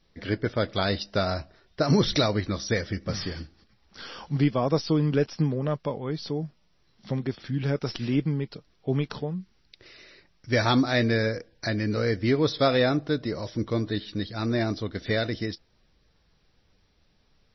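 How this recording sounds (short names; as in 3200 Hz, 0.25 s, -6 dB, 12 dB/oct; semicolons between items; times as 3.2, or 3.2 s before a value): a quantiser's noise floor 12-bit, dither triangular; MP3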